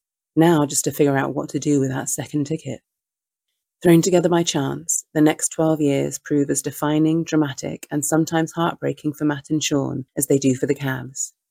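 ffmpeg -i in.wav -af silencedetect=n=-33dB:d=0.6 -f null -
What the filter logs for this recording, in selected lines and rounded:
silence_start: 2.76
silence_end: 3.83 | silence_duration: 1.07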